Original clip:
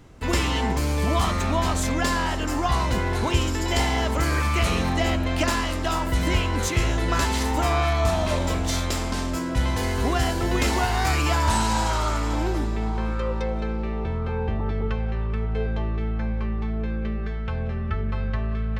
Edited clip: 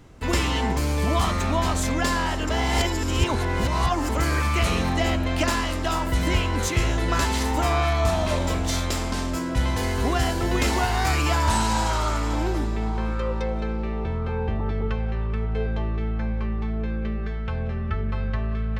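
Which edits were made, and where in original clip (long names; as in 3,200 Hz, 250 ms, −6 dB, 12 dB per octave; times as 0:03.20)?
0:02.49–0:04.09: reverse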